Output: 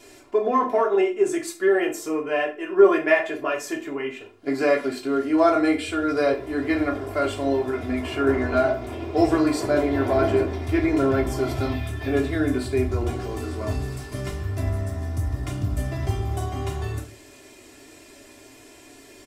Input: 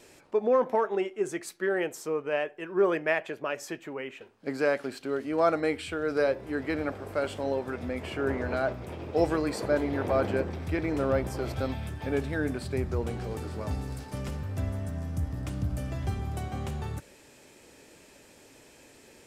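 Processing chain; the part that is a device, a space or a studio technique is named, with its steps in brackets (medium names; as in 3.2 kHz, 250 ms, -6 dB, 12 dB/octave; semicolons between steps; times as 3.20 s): microphone above a desk (comb 2.9 ms, depth 78%; reverberation RT60 0.35 s, pre-delay 5 ms, DRR 0.5 dB); trim +2 dB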